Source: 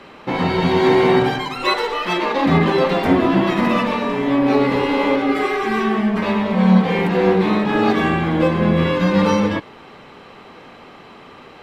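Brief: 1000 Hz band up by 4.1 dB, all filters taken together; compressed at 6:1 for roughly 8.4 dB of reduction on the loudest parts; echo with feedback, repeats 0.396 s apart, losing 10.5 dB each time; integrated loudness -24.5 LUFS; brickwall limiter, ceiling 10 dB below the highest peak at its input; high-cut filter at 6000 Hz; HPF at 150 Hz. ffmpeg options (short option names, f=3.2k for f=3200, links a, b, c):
-af "highpass=150,lowpass=6k,equalizer=f=1k:t=o:g=5,acompressor=threshold=-18dB:ratio=6,alimiter=limit=-19dB:level=0:latency=1,aecho=1:1:396|792|1188:0.299|0.0896|0.0269,volume=2.5dB"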